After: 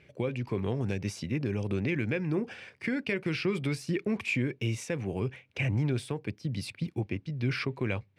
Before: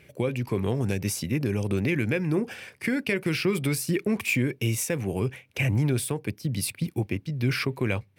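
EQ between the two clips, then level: LPF 5100 Hz 12 dB/oct; -4.5 dB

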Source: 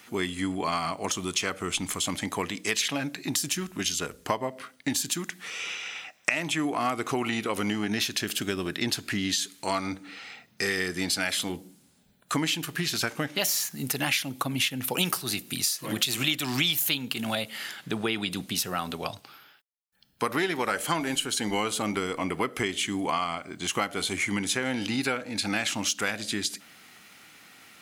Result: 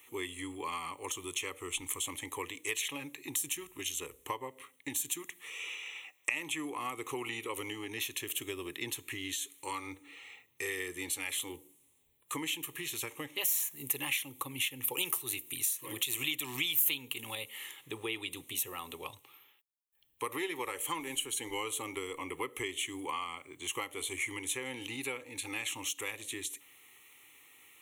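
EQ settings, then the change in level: high shelf 4300 Hz +9.5 dB; fixed phaser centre 1000 Hz, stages 8; -8.0 dB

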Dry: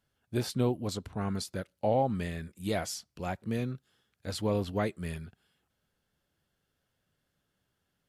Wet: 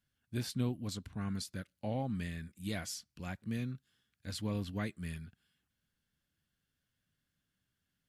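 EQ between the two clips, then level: band shelf 590 Hz -9 dB; notch 1300 Hz, Q 11; -4.0 dB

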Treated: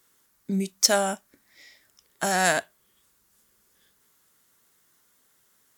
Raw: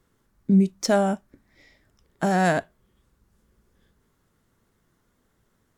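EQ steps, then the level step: tilt +4 dB/oct; 0.0 dB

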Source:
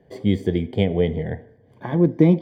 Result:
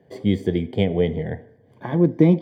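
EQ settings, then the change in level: HPF 80 Hz; 0.0 dB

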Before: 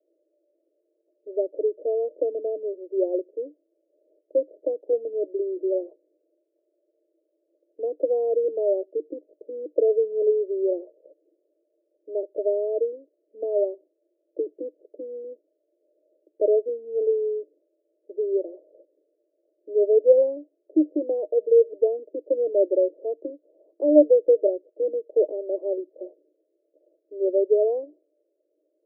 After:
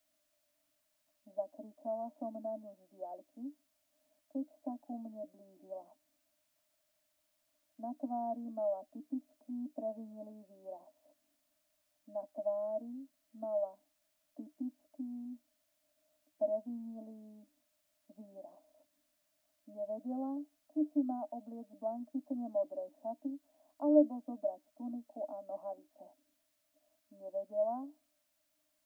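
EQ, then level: elliptic band-stop 240–690 Hz, stop band 40 dB; band shelf 530 Hz -16 dB 1.2 oct; +16.5 dB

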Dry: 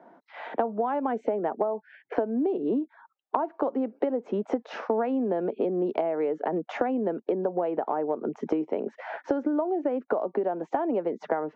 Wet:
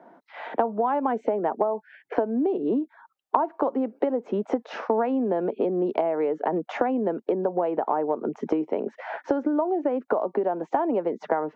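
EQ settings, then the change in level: dynamic EQ 980 Hz, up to +4 dB, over -40 dBFS, Q 2.7; +2.0 dB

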